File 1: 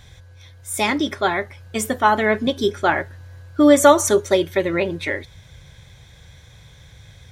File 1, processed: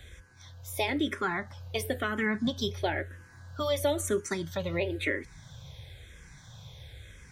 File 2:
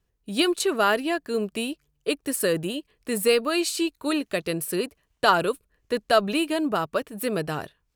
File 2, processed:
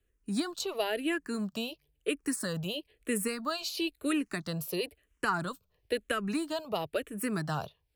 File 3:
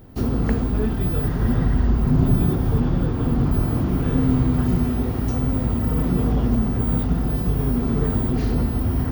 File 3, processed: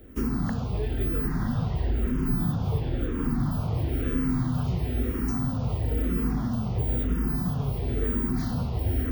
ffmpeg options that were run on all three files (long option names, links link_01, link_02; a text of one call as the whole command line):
ffmpeg -i in.wav -filter_complex "[0:a]acrossover=split=180|1300[link_01][link_02][link_03];[link_01]acompressor=threshold=-22dB:ratio=4[link_04];[link_02]acompressor=threshold=-28dB:ratio=4[link_05];[link_03]acompressor=threshold=-31dB:ratio=4[link_06];[link_04][link_05][link_06]amix=inputs=3:normalize=0,asplit=2[link_07][link_08];[link_08]afreqshift=-1[link_09];[link_07][link_09]amix=inputs=2:normalize=1" out.wav